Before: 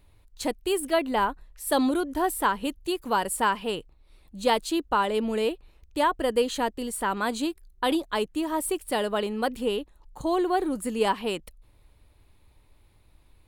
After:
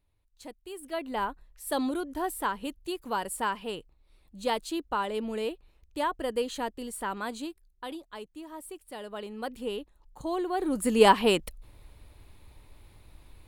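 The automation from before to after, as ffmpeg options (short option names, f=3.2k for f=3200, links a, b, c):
-af "volume=15dB,afade=t=in:st=0.74:d=0.49:silence=0.316228,afade=t=out:st=7.07:d=0.86:silence=0.354813,afade=t=in:st=8.95:d=0.86:silence=0.354813,afade=t=in:st=10.55:d=0.49:silence=0.251189"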